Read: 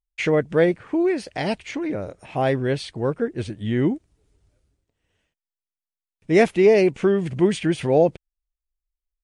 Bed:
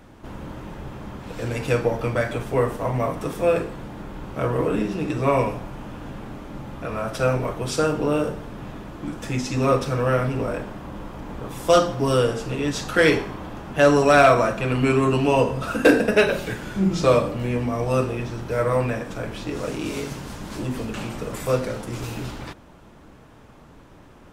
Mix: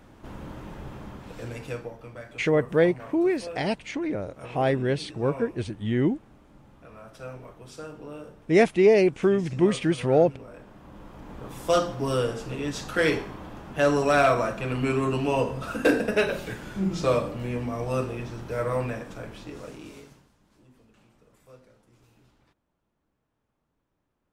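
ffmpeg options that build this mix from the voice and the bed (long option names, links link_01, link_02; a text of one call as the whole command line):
ffmpeg -i stem1.wav -i stem2.wav -filter_complex "[0:a]adelay=2200,volume=-2.5dB[link_01];[1:a]volume=8.5dB,afade=type=out:start_time=0.96:duration=0.99:silence=0.188365,afade=type=in:start_time=10.51:duration=1.02:silence=0.237137,afade=type=out:start_time=18.85:duration=1.46:silence=0.0630957[link_02];[link_01][link_02]amix=inputs=2:normalize=0" out.wav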